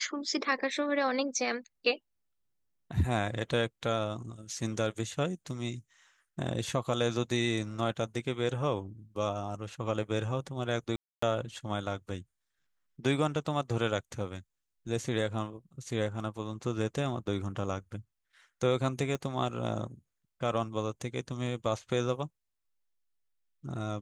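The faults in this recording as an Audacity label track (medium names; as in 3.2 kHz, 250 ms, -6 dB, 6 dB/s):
10.960000	11.220000	dropout 264 ms
19.150000	19.150000	pop -21 dBFS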